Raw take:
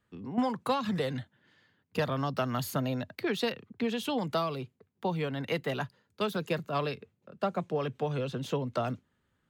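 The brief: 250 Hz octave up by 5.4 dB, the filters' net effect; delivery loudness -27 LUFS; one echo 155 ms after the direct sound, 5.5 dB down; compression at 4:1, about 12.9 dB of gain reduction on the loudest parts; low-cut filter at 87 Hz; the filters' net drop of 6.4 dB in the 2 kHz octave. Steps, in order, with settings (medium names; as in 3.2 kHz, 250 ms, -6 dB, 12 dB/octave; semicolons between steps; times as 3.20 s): high-pass 87 Hz; peaking EQ 250 Hz +6.5 dB; peaking EQ 2 kHz -9 dB; compression 4:1, threshold -34 dBFS; delay 155 ms -5.5 dB; trim +10.5 dB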